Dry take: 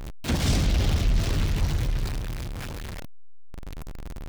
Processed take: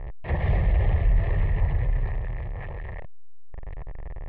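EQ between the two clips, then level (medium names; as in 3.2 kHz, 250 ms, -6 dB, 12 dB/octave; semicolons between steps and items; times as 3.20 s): resonant low-pass 1.8 kHz, resonance Q 9; distance through air 470 m; static phaser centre 620 Hz, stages 4; +2.5 dB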